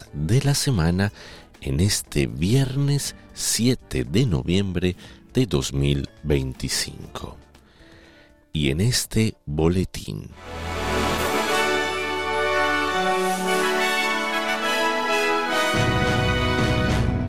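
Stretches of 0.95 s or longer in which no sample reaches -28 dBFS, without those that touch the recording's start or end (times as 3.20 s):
7.29–8.55 s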